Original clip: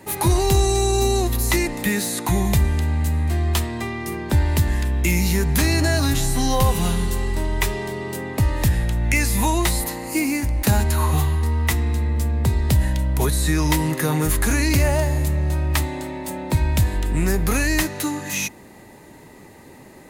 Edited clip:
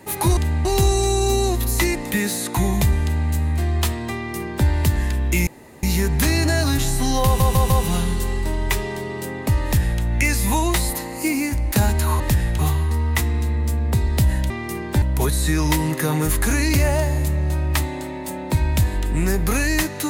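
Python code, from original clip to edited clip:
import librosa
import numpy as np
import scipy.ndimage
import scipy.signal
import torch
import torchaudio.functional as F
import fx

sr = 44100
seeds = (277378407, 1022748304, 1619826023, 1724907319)

y = fx.edit(x, sr, fx.duplicate(start_s=2.74, length_s=0.28, to_s=0.37),
    fx.duplicate(start_s=3.87, length_s=0.52, to_s=13.02),
    fx.insert_room_tone(at_s=5.19, length_s=0.36),
    fx.stutter(start_s=6.61, slice_s=0.15, count=4),
    fx.duplicate(start_s=8.54, length_s=0.39, to_s=11.11), tone=tone)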